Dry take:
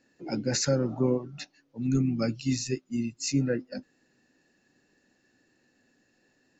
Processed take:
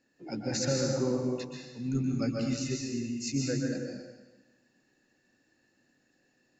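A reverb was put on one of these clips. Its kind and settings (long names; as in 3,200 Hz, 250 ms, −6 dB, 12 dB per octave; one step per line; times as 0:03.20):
dense smooth reverb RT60 1.2 s, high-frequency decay 1×, pre-delay 115 ms, DRR −0.5 dB
level −5.5 dB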